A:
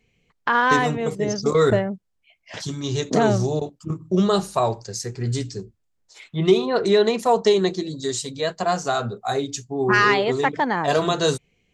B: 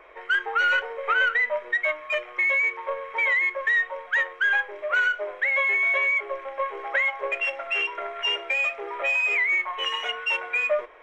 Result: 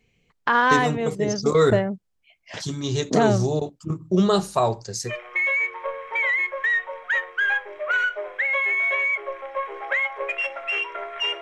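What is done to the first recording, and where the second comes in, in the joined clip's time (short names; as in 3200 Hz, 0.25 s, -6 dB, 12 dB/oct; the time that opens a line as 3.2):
A
5.12 switch to B from 2.15 s, crossfade 0.12 s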